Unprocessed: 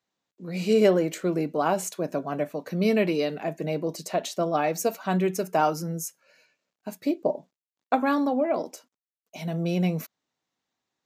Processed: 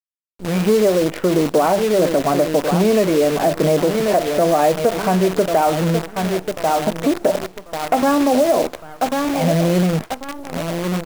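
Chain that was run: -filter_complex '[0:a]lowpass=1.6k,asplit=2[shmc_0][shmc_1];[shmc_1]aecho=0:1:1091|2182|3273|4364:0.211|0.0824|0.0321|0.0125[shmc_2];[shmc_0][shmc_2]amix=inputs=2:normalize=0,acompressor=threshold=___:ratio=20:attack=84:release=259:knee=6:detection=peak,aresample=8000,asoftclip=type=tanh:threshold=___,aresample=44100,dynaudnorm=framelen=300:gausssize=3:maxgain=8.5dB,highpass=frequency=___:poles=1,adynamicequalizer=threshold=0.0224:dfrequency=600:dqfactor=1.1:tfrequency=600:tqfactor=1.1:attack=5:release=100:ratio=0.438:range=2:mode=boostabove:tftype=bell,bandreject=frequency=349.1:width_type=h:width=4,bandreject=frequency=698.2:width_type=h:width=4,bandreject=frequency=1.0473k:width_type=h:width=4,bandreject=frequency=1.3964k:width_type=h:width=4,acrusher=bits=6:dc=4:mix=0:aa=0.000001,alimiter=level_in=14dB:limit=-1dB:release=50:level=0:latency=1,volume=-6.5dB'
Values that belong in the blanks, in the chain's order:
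-31dB, -22.5dB, 68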